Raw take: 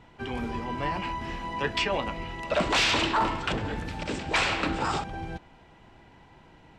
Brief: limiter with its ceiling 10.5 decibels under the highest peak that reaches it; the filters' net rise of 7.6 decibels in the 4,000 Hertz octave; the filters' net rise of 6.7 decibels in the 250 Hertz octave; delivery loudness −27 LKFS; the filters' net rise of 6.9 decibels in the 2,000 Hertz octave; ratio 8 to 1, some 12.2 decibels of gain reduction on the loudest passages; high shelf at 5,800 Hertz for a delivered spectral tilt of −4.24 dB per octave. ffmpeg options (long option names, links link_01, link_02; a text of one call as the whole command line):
ffmpeg -i in.wav -af "equalizer=frequency=250:width_type=o:gain=8.5,equalizer=frequency=2000:width_type=o:gain=6,equalizer=frequency=4000:width_type=o:gain=5,highshelf=frequency=5800:gain=7.5,acompressor=threshold=-27dB:ratio=8,volume=5dB,alimiter=limit=-18dB:level=0:latency=1" out.wav